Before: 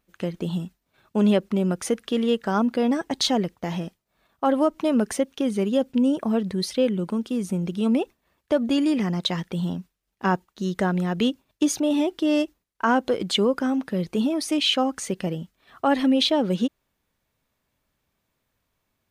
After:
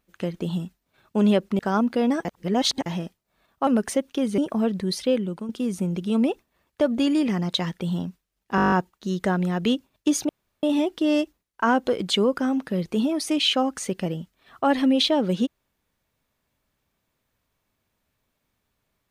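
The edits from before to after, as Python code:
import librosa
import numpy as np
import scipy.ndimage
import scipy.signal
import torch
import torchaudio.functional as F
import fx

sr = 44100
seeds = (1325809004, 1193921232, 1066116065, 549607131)

y = fx.edit(x, sr, fx.cut(start_s=1.59, length_s=0.81),
    fx.reverse_span(start_s=3.06, length_s=0.61),
    fx.cut(start_s=4.48, length_s=0.42),
    fx.cut(start_s=5.61, length_s=0.48),
    fx.fade_out_to(start_s=6.68, length_s=0.52, curve='qsin', floor_db=-9.5),
    fx.stutter(start_s=10.27, slice_s=0.02, count=9),
    fx.insert_room_tone(at_s=11.84, length_s=0.34), tone=tone)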